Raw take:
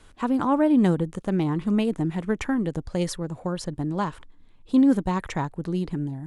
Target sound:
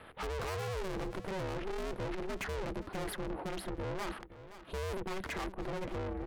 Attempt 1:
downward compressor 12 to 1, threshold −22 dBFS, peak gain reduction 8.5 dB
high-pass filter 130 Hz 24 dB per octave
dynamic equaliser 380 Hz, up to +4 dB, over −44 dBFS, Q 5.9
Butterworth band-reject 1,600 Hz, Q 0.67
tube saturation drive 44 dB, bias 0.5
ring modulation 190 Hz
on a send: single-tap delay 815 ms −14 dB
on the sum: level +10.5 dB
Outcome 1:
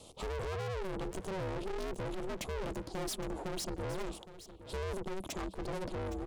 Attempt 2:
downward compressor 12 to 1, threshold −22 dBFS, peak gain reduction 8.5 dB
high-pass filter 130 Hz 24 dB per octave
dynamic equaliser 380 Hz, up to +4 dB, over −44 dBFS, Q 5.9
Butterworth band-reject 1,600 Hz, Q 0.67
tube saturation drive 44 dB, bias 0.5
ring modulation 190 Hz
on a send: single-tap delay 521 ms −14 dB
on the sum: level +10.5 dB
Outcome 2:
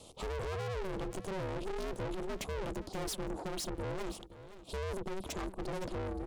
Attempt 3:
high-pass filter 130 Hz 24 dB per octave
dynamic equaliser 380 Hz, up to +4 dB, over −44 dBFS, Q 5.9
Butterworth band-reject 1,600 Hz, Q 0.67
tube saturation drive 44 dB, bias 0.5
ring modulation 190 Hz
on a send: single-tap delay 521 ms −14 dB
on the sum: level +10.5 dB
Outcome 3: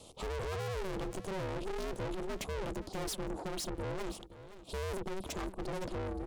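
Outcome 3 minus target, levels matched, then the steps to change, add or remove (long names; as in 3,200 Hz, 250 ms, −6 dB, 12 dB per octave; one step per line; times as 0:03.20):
8,000 Hz band +5.0 dB
change: Butterworth band-reject 6,400 Hz, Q 0.67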